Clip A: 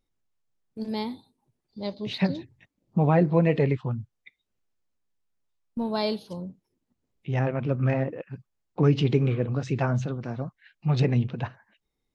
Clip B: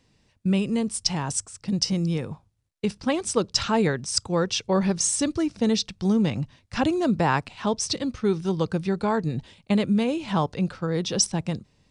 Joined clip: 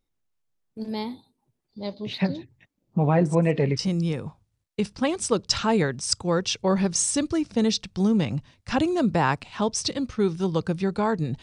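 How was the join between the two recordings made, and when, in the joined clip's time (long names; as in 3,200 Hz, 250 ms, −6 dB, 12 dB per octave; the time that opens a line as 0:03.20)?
clip A
0:03.16: mix in clip B from 0:01.21 0.63 s −16.5 dB
0:03.79: continue with clip B from 0:01.84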